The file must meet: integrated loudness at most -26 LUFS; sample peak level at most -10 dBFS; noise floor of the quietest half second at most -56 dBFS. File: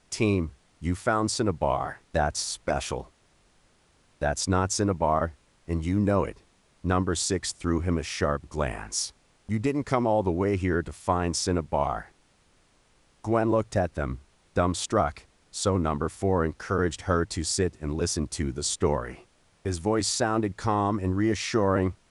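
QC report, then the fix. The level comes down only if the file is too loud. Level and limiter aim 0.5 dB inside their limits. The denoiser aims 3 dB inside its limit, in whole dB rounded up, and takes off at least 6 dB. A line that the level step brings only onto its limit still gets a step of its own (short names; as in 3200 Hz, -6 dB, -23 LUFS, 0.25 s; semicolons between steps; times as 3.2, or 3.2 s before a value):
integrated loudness -27.5 LUFS: OK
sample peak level -9.5 dBFS: fail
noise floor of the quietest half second -63 dBFS: OK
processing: limiter -10.5 dBFS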